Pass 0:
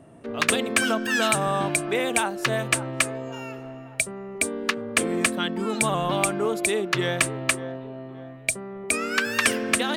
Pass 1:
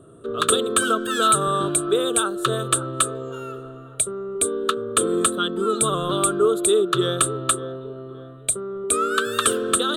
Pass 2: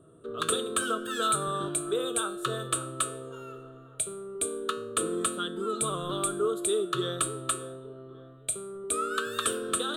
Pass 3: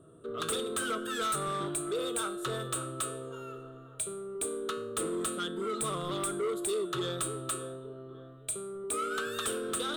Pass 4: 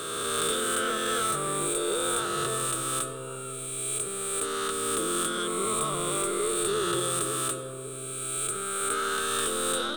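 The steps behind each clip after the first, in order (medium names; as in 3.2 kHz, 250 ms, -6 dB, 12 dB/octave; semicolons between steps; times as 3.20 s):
FFT filter 120 Hz 0 dB, 250 Hz -6 dB, 410 Hz +7 dB, 860 Hz -15 dB, 1.3 kHz +9 dB, 2.1 kHz -23 dB, 3.6 kHz +6 dB, 5.2 kHz -16 dB, 8.4 kHz +5 dB, 14 kHz -3 dB; trim +2.5 dB
feedback comb 160 Hz, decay 0.52 s, harmonics all, mix 70%
saturation -27.5 dBFS, distortion -10 dB
reverse spectral sustain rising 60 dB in 2.68 s; algorithmic reverb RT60 3.7 s, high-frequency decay 0.25×, pre-delay 50 ms, DRR 11.5 dB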